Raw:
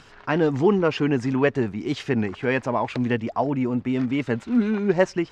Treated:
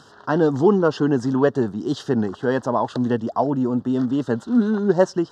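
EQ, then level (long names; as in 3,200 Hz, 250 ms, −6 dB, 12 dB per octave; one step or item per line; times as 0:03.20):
high-pass filter 120 Hz
Butterworth band-reject 2,300 Hz, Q 1.3
+3.0 dB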